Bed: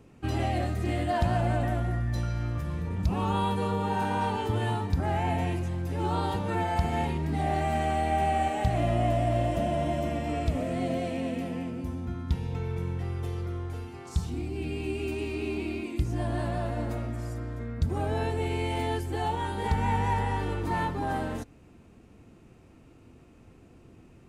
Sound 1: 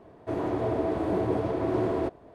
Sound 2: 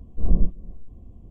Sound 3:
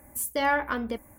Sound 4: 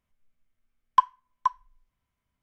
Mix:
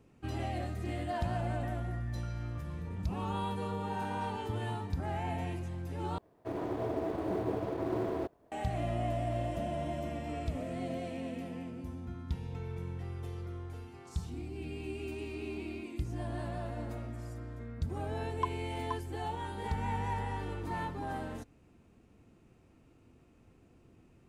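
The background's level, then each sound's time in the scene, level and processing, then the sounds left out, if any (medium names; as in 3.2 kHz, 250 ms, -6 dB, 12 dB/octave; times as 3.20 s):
bed -8 dB
6.18 s: replace with 1 -6 dB + companding laws mixed up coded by A
17.45 s: add 4 -14.5 dB
not used: 2, 3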